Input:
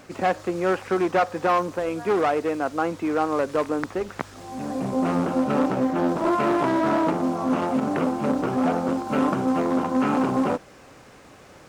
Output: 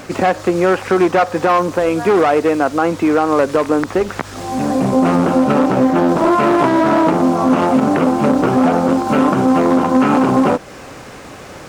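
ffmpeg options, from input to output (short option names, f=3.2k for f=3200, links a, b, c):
-filter_complex "[0:a]asplit=2[a][b];[b]acompressor=threshold=-29dB:ratio=6,volume=1dB[c];[a][c]amix=inputs=2:normalize=0,alimiter=level_in=10.5dB:limit=-1dB:release=50:level=0:latency=1,volume=-3dB"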